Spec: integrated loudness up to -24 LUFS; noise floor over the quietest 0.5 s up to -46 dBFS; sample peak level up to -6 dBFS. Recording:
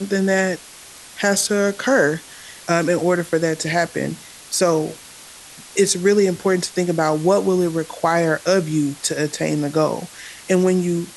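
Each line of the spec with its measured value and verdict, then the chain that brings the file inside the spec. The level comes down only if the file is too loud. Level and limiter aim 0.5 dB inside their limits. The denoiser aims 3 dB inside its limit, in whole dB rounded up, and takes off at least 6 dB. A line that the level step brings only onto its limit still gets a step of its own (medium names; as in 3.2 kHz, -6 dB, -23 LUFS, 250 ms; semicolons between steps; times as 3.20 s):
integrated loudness -19.5 LUFS: fail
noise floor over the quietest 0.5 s -41 dBFS: fail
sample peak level -5.0 dBFS: fail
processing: noise reduction 6 dB, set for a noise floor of -41 dBFS; trim -5 dB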